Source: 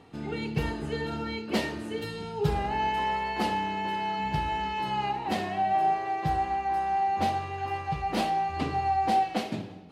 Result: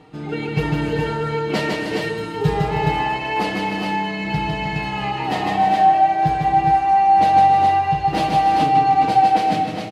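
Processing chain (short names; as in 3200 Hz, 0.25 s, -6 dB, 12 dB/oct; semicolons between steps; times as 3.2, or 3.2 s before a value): high shelf 8600 Hz -7 dB; comb 6.5 ms, depth 67%; tapped delay 0.153/0.277/0.311/0.384/0.417 s -3/-12.5/-9.5/-11/-4 dB; gain +4.5 dB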